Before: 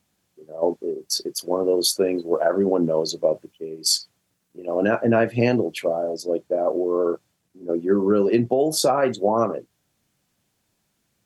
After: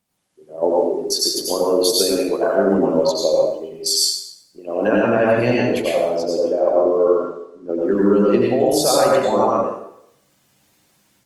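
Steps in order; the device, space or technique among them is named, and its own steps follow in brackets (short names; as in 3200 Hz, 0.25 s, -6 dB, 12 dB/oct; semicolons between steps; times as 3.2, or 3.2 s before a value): 6.08–7.81 LPF 6600 Hz 12 dB/oct; far-field microphone of a smart speaker (reverb RT60 0.70 s, pre-delay 86 ms, DRR -4 dB; HPF 140 Hz 6 dB/oct; AGC gain up to 10 dB; gain -3 dB; Opus 24 kbps 48000 Hz)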